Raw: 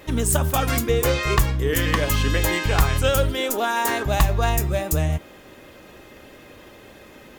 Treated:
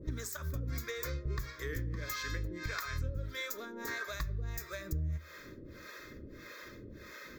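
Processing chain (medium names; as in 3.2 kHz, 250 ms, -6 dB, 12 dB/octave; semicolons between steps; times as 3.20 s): harmonic tremolo 1.6 Hz, depth 100%, crossover 500 Hz; compression 12:1, threshold -35 dBFS, peak gain reduction 18 dB; dynamic bell 220 Hz, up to -6 dB, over -53 dBFS, Q 0.86; static phaser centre 2.9 kHz, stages 6; on a send: reverberation RT60 0.70 s, pre-delay 3 ms, DRR 17.5 dB; on the sum: trim +4 dB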